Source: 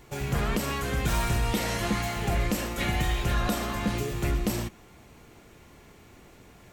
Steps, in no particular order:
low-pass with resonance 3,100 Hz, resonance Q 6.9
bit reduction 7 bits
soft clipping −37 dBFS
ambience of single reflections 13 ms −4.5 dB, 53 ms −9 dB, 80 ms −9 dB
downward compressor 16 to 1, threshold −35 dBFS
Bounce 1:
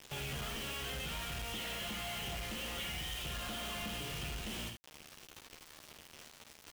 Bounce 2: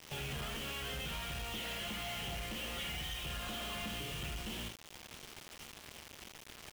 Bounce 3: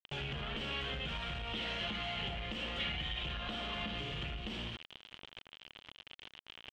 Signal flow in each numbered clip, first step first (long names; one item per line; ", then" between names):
low-pass with resonance, then downward compressor, then bit reduction, then ambience of single reflections, then soft clipping
low-pass with resonance, then downward compressor, then ambience of single reflections, then bit reduction, then soft clipping
ambience of single reflections, then bit reduction, then downward compressor, then soft clipping, then low-pass with resonance